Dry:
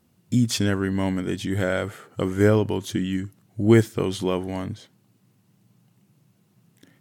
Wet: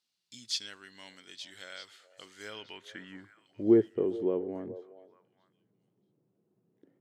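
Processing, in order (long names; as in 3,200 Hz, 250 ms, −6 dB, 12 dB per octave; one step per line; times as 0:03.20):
band-pass filter sweep 4,300 Hz → 400 Hz, 0:02.43–0:03.67
echo through a band-pass that steps 421 ms, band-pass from 580 Hz, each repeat 1.4 octaves, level −11 dB
level −2 dB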